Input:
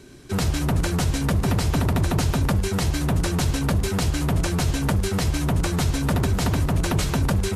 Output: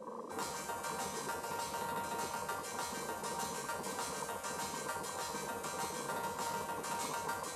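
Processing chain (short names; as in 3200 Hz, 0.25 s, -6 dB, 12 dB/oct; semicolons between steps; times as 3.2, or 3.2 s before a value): high shelf 12000 Hz +7.5 dB; resonator bank D#3 major, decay 0.75 s; band noise 240–430 Hz -36 dBFS; soft clip -28 dBFS, distortion -20 dB; HPF 90 Hz 24 dB/oct; spectral gate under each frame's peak -10 dB weak; graphic EQ 125/1000/8000 Hz -8/+10/+6 dB; gain +4 dB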